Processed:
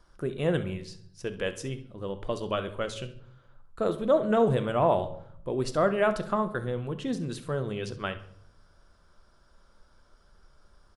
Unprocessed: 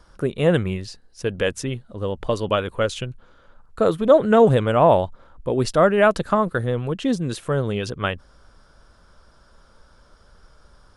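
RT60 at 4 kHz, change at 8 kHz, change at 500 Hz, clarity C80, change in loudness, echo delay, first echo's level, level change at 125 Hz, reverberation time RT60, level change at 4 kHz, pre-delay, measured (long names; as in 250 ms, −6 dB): 0.50 s, −8.5 dB, −8.5 dB, 17.5 dB, −8.5 dB, 67 ms, −16.0 dB, −8.5 dB, 0.65 s, −8.5 dB, 3 ms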